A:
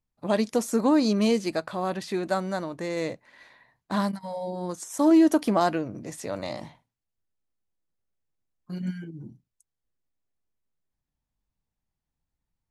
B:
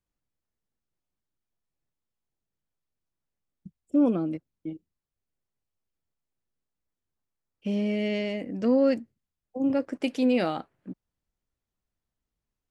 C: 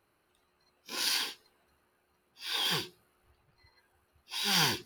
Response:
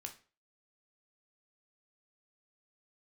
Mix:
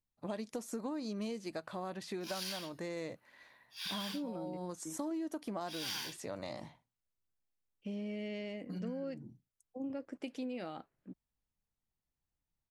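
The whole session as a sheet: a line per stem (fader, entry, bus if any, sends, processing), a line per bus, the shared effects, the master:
-7.5 dB, 0.00 s, no send, none
-10.5 dB, 0.20 s, no send, none
-2.5 dB, 1.35 s, no send, high-pass 1.4 kHz 6 dB/octave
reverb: none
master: compression 6:1, threshold -37 dBFS, peak gain reduction 14 dB

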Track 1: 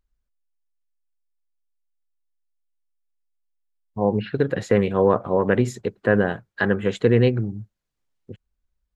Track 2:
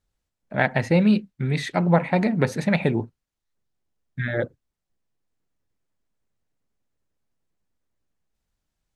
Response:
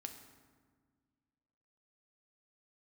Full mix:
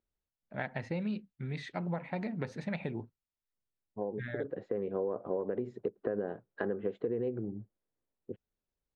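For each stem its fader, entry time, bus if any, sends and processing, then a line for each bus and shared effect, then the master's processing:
+1.0 dB, 0.00 s, no send, peak limiter -10 dBFS, peak gain reduction 4.5 dB; band-pass filter 420 Hz, Q 1.3; auto duck -12 dB, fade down 0.45 s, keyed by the second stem
-13.5 dB, 0.00 s, no send, none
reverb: none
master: low-pass 5.1 kHz 12 dB/octave; compression 6:1, threshold -31 dBFS, peak gain reduction 13.5 dB

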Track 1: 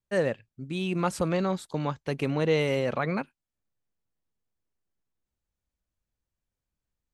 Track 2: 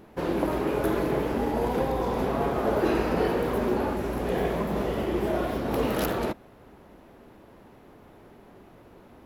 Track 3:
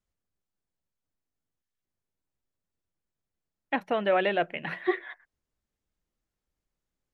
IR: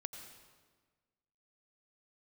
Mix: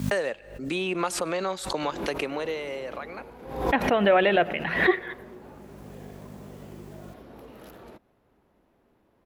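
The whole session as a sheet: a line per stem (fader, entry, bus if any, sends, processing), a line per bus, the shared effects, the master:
+0.5 dB, 0.00 s, send -15.5 dB, high-pass 430 Hz 12 dB/octave; hum 50 Hz, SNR 34 dB; three bands compressed up and down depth 100%; auto duck -19 dB, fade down 1.60 s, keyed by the third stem
-15.0 dB, 1.65 s, no send, compression, threshold -28 dBFS, peak gain reduction 8.5 dB
+3.0 dB, 0.00 s, send -11 dB, none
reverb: on, RT60 1.4 s, pre-delay 81 ms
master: swell ahead of each attack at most 78 dB/s

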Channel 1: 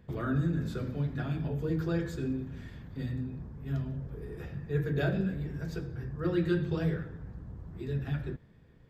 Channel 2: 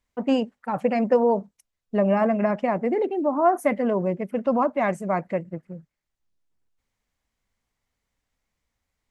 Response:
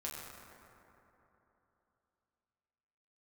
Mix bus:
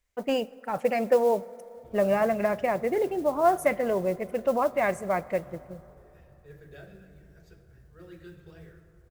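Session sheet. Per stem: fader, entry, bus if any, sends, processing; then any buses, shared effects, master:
-14.0 dB, 1.75 s, send -5 dB, none
+2.0 dB, 0.00 s, send -17 dB, none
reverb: on, RT60 3.3 s, pre-delay 6 ms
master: ten-band graphic EQ 125 Hz -7 dB, 250 Hz -11 dB, 1 kHz -7 dB, 4 kHz -4 dB; modulation noise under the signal 27 dB

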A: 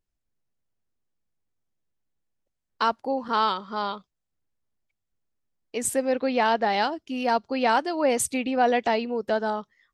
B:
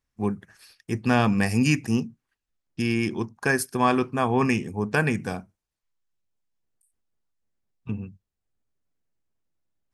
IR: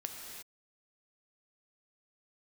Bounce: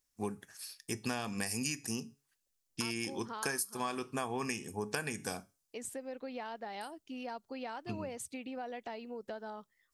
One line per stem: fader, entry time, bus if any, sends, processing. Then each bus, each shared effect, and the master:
-11.5 dB, 0.00 s, no send, compression 5:1, threshold -28 dBFS, peak gain reduction 11 dB
-1.5 dB, 0.00 s, no send, tone controls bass -7 dB, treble +15 dB; feedback comb 140 Hz, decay 0.3 s, harmonics all, mix 40%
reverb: none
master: compression 12:1, threshold -32 dBFS, peak gain reduction 16 dB

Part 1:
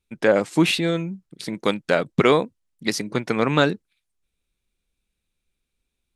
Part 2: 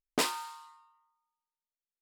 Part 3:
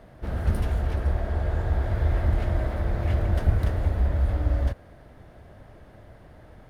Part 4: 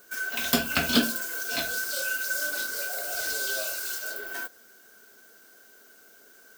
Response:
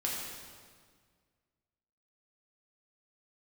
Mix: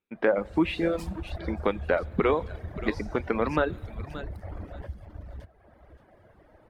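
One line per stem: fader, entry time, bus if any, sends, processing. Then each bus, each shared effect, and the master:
-0.5 dB, 0.00 s, bus A, send -20 dB, echo send -19.5 dB, low-pass 3.2 kHz 6 dB/octave
-16.0 dB, 0.80 s, no bus, no send, echo send -21 dB, none
-5.0 dB, 0.15 s, bus A, send -10.5 dB, echo send -6 dB, saturation -23 dBFS, distortion -11 dB
mute
bus A: 0.0 dB, band-pass 210–2400 Hz; compression 2:1, threshold -24 dBFS, peak gain reduction 6.5 dB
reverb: on, RT60 1.8 s, pre-delay 3 ms
echo: feedback delay 576 ms, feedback 21%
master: reverb removal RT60 1.2 s

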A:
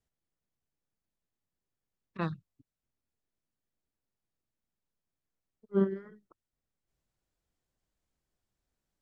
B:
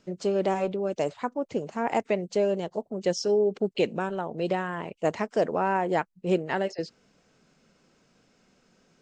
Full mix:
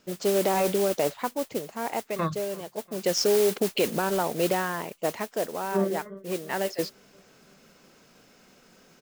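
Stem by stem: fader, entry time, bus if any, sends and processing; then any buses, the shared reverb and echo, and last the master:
-5.0 dB, 0.00 s, no send, echo send -22 dB, bass shelf 420 Hz +7.5 dB; small resonant body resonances 600/1100/2100/3500 Hz, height 16 dB
+2.5 dB, 0.00 s, no send, no echo send, modulation noise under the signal 13 dB; auto duck -14 dB, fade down 1.50 s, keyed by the first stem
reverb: none
echo: feedback delay 344 ms, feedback 54%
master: bass shelf 250 Hz -6 dB; level rider gain up to 6 dB; peak limiter -14 dBFS, peak gain reduction 8.5 dB

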